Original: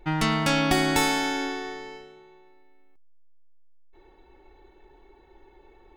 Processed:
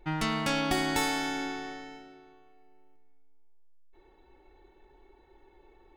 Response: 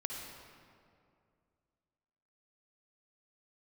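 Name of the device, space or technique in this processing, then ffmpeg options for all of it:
saturated reverb return: -filter_complex "[0:a]asplit=2[a][b];[1:a]atrim=start_sample=2205[c];[b][c]afir=irnorm=-1:irlink=0,asoftclip=type=tanh:threshold=-22.5dB,volume=-8.5dB[d];[a][d]amix=inputs=2:normalize=0,volume=-7dB"

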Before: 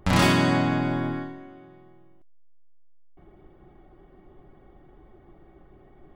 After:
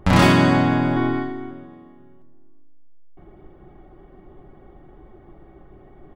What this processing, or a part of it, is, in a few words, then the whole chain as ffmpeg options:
behind a face mask: -filter_complex "[0:a]highshelf=f=3.1k:g=-6.5,asettb=1/sr,asplit=3[a][b][c];[a]atrim=end=0.964[d];[b]atrim=start=0.96:end=1.51,asetpts=PTS-STARTPTS,afade=t=in:d=0.004:c=qsin,afade=t=out:st=0.546:d=0.004:c=qsin,aecho=1:1:2.7:0.74,atrim=end_sample=24255[e];[c]atrim=start=1.506[f];[d][e]acrossfade=d=0.004:c1=hsin:c2=qsin[g];[g][f]acrossfade=d=0.004:c1=qsin:c2=hsin,asplit=2[h][i];[i]adelay=343,lowpass=f=1.2k:p=1,volume=-16.5dB,asplit=2[j][k];[k]adelay=343,lowpass=f=1.2k:p=1,volume=0.43,asplit=2[l][m];[m]adelay=343,lowpass=f=1.2k:p=1,volume=0.43,asplit=2[n][o];[o]adelay=343,lowpass=f=1.2k:p=1,volume=0.43[p];[h][j][l][n][p]amix=inputs=5:normalize=0,volume=6dB"

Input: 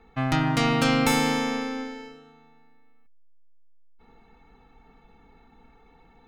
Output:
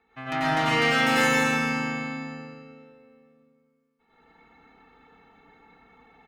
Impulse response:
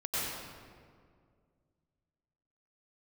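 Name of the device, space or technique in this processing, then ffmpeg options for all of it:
stadium PA: -filter_complex "[0:a]highpass=f=190:p=1,equalizer=f=2k:t=o:w=1.7:g=6.5,aecho=1:1:166.2|204.1:0.562|0.355[a];[1:a]atrim=start_sample=2205[b];[a][b]afir=irnorm=-1:irlink=0,volume=-8.5dB"

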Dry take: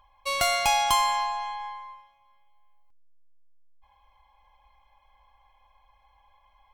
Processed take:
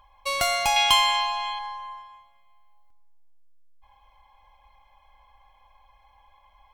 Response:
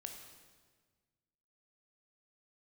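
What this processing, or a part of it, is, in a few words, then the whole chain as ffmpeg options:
compressed reverb return: -filter_complex "[0:a]asettb=1/sr,asplit=3[a][b][c];[a]atrim=end=0.764[d];[b]atrim=start=0.76:end=1.59,asetpts=PTS-STARTPTS,afade=t=in:d=0.004:c=qsin,afade=t=out:st=0.826:d=0.004:c=qsin,equalizer=f=2.9k:t=o:w=1.1:g=12[e];[c]atrim=start=1.586[f];[d][e]acrossfade=d=0.004:c1=hsin:c2=qsin[g];[g][f]acrossfade=d=0.004:c1=qsin:c2=hsin,asplit=2[h][i];[1:a]atrim=start_sample=2205[j];[i][j]afir=irnorm=-1:irlink=0,acompressor=threshold=-38dB:ratio=6,volume=3.5dB[k];[h][k]amix=inputs=2:normalize=0,volume=-1.5dB"

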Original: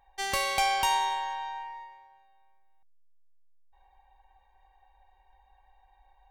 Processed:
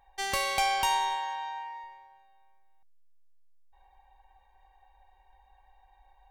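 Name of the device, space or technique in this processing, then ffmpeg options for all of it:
parallel compression: -filter_complex "[0:a]asplit=2[a][b];[b]acompressor=threshold=-38dB:ratio=6,volume=-9dB[c];[a][c]amix=inputs=2:normalize=0,asettb=1/sr,asplit=3[d][e][f];[d]atrim=end=1.164[g];[e]atrim=start=1.16:end=1.84,asetpts=PTS-STARTPTS,afade=t=in:d=0.004:c=qsin,afade=t=out:st=0.676:d=0.004:c=qsin,highpass=f=260:p=1[h];[f]atrim=start=1.836[i];[g][h]acrossfade=d=0.004:c1=hsin:c2=qsin[j];[j][i]acrossfade=d=0.004:c1=qsin:c2=hsin,volume=-1.5dB"

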